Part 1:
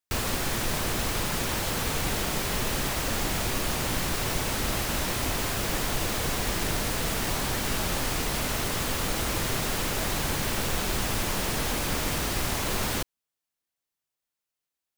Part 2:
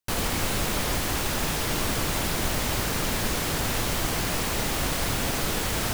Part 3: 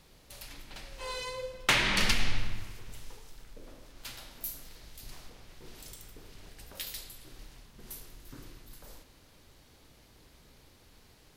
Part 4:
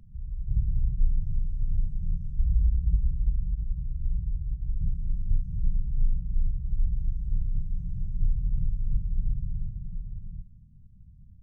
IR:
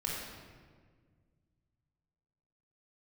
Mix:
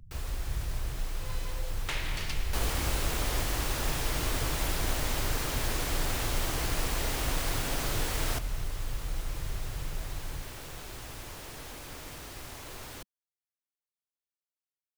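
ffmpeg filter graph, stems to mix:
-filter_complex "[0:a]volume=-15dB[link_01];[1:a]adelay=2450,volume=-6dB[link_02];[2:a]adelay=200,volume=-11dB[link_03];[3:a]acompressor=threshold=-30dB:ratio=6,volume=0.5dB[link_04];[link_01][link_02][link_03][link_04]amix=inputs=4:normalize=0,equalizer=frequency=200:width_type=o:width=0.22:gain=-14"

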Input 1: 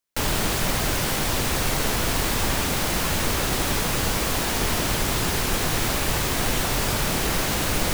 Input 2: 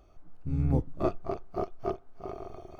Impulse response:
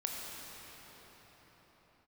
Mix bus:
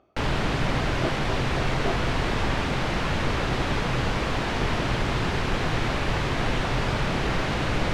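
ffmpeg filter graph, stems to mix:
-filter_complex "[0:a]equalizer=frequency=130:width=6.2:gain=5.5,volume=-0.5dB[link_01];[1:a]highpass=150,tremolo=f=2.1:d=0.65,volume=2.5dB[link_02];[link_01][link_02]amix=inputs=2:normalize=0,lowpass=3100"

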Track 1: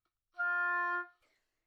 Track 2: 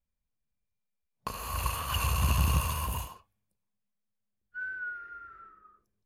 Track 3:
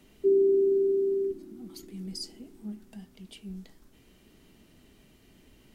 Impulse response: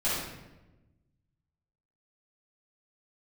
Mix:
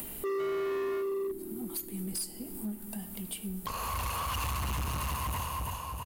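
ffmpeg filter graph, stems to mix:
-filter_complex "[0:a]volume=-8.5dB[link_01];[1:a]asoftclip=type=tanh:threshold=-27.5dB,adelay=2400,volume=0.5dB,asplit=2[link_02][link_03];[link_03]volume=-5dB[link_04];[2:a]aexciter=amount=11:drive=3.9:freq=8500,volume=-3dB,asplit=2[link_05][link_06];[link_06]volume=-23.5dB[link_07];[3:a]atrim=start_sample=2205[link_08];[link_07][link_08]afir=irnorm=-1:irlink=0[link_09];[link_04]aecho=0:1:327|654|981|1308|1635:1|0.33|0.109|0.0359|0.0119[link_10];[link_01][link_02][link_05][link_09][link_10]amix=inputs=5:normalize=0,equalizer=frequency=920:width=1.4:gain=4.5,acompressor=mode=upward:threshold=-29dB:ratio=2.5,asoftclip=type=hard:threshold=-30.5dB"

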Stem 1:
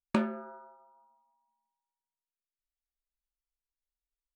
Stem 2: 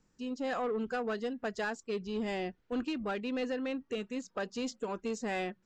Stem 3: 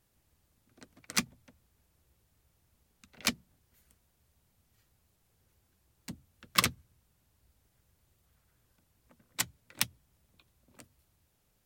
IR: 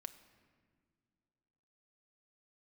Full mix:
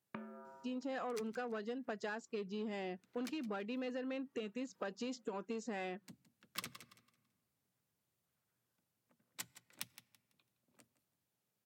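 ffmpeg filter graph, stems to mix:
-filter_complex "[0:a]lowpass=frequency=2800:width=0.5412,lowpass=frequency=2800:width=1.3066,acompressor=threshold=-35dB:ratio=6,volume=-9dB[link_01];[1:a]highshelf=frequency=5800:gain=-5,adelay=450,volume=1.5dB[link_02];[2:a]volume=-14dB,asplit=3[link_03][link_04][link_05];[link_04]volume=-8dB[link_06];[link_05]volume=-15dB[link_07];[3:a]atrim=start_sample=2205[link_08];[link_06][link_08]afir=irnorm=-1:irlink=0[link_09];[link_07]aecho=0:1:166|332|498|664:1|0.27|0.0729|0.0197[link_10];[link_01][link_02][link_03][link_09][link_10]amix=inputs=5:normalize=0,highpass=frequency=120:width=0.5412,highpass=frequency=120:width=1.3066,acompressor=threshold=-40dB:ratio=4"

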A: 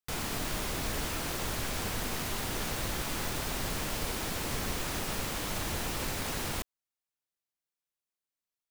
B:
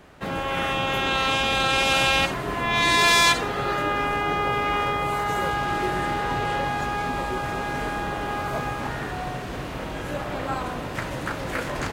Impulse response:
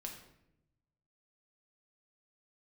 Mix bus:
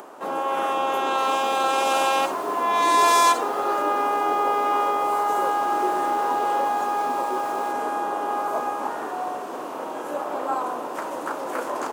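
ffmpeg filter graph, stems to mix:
-filter_complex "[0:a]adelay=1100,volume=-14dB,asplit=2[link_01][link_02];[link_02]volume=-3dB[link_03];[1:a]equalizer=frequency=1000:width_type=o:width=1:gain=7,equalizer=frequency=2000:width_type=o:width=1:gain=-11,equalizer=frequency=4000:width_type=o:width=1:gain=-8,volume=1.5dB[link_04];[2:a]atrim=start_sample=2205[link_05];[link_03][link_05]afir=irnorm=-1:irlink=0[link_06];[link_01][link_04][link_06]amix=inputs=3:normalize=0,highpass=frequency=290:width=0.5412,highpass=frequency=290:width=1.3066,acompressor=mode=upward:threshold=-35dB:ratio=2.5"

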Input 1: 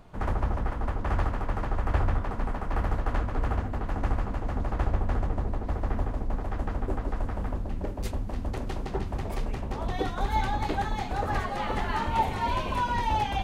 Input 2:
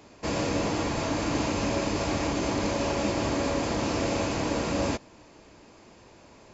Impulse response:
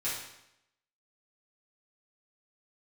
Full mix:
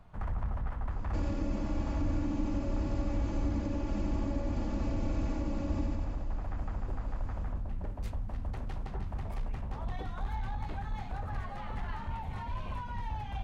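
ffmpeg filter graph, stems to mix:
-filter_complex "[0:a]equalizer=frequency=370:width=0.93:gain=-10,asoftclip=type=tanh:threshold=-25dB,volume=-2dB[link_01];[1:a]aecho=1:1:3.5:0.74,adelay=900,volume=-5.5dB,asplit=2[link_02][link_03];[link_03]volume=-3dB,aecho=0:1:92|184|276|368|460|552|644:1|0.49|0.24|0.118|0.0576|0.0282|0.0138[link_04];[link_01][link_02][link_04]amix=inputs=3:normalize=0,highshelf=frequency=2400:gain=-10.5,acrossover=split=230[link_05][link_06];[link_06]acompressor=threshold=-41dB:ratio=5[link_07];[link_05][link_07]amix=inputs=2:normalize=0"

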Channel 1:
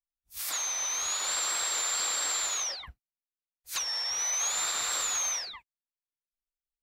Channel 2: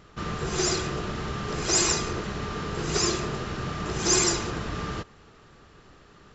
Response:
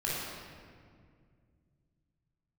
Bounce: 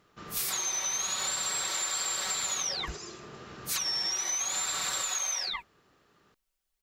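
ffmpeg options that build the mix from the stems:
-filter_complex "[0:a]acompressor=threshold=-34dB:ratio=6,aecho=1:1:5.3:0.71,acontrast=87,volume=2.5dB[link_01];[1:a]highpass=frequency=190:poles=1,alimiter=limit=-21dB:level=0:latency=1:release=493,volume=-11dB[link_02];[link_01][link_02]amix=inputs=2:normalize=0,acompressor=threshold=-29dB:ratio=6"

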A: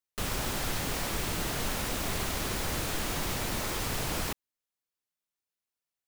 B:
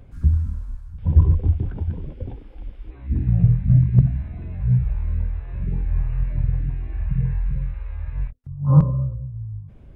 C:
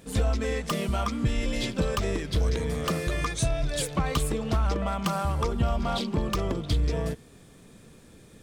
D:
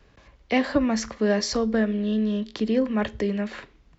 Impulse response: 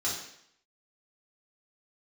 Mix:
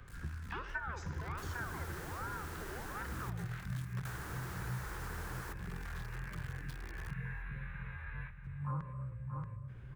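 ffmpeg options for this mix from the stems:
-filter_complex "[0:a]equalizer=frequency=3100:width_type=o:width=1.8:gain=-6,adelay=1200,volume=-4dB,asplit=3[link_01][link_02][link_03];[link_01]atrim=end=3.3,asetpts=PTS-STARTPTS,afade=type=out:start_time=3.296:duration=0.004:curve=hsin[link_04];[link_02]atrim=start=3.3:end=4.05,asetpts=PTS-STARTPTS,volume=0[link_05];[link_03]atrim=start=4.05,asetpts=PTS-STARTPTS,afade=type=in:duration=0.004:curve=hsin[link_06];[link_04][link_05][link_06]concat=n=3:v=0:a=1,asplit=2[link_07][link_08];[link_08]volume=-20dB[link_09];[1:a]alimiter=limit=-8dB:level=0:latency=1:release=493,volume=-2.5dB,asplit=2[link_10][link_11];[link_11]volume=-11.5dB[link_12];[2:a]acompressor=threshold=-35dB:ratio=10,acrusher=bits=3:dc=4:mix=0:aa=0.000001,volume=-10dB,afade=type=in:start_time=0.98:duration=0.38:silence=0.316228[link_13];[3:a]aeval=exprs='val(0)*sin(2*PI*680*n/s+680*0.8/1.3*sin(2*PI*1.3*n/s))':channel_layout=same,volume=-13dB,asplit=2[link_14][link_15];[link_15]volume=-13.5dB[link_16];[4:a]atrim=start_sample=2205[link_17];[link_16][link_17]afir=irnorm=-1:irlink=0[link_18];[link_09][link_12]amix=inputs=2:normalize=0,aecho=0:1:631|1262|1893|2524|3155:1|0.33|0.109|0.0359|0.0119[link_19];[link_07][link_10][link_13][link_14][link_18][link_19]amix=inputs=6:normalize=0,lowshelf=frequency=150:gain=-7,acrossover=split=160|550|1200[link_20][link_21][link_22][link_23];[link_20]acompressor=threshold=-46dB:ratio=4[link_24];[link_21]acompressor=threshold=-43dB:ratio=4[link_25];[link_22]acompressor=threshold=-48dB:ratio=4[link_26];[link_23]acompressor=threshold=-54dB:ratio=4[link_27];[link_24][link_25][link_26][link_27]amix=inputs=4:normalize=0,equalizer=frequency=250:width_type=o:width=0.67:gain=-8,equalizer=frequency=630:width_type=o:width=0.67:gain=-11,equalizer=frequency=1600:width_type=o:width=0.67:gain=11"

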